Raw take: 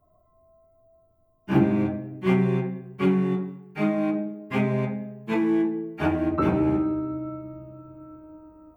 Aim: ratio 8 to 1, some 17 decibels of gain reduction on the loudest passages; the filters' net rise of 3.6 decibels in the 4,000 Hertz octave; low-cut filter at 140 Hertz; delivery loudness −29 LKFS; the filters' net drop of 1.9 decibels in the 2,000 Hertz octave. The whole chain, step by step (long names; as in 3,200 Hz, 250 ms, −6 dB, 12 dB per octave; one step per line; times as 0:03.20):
high-pass filter 140 Hz
parametric band 2,000 Hz −4.5 dB
parametric band 4,000 Hz +7.5 dB
downward compressor 8 to 1, threshold −34 dBFS
level +9.5 dB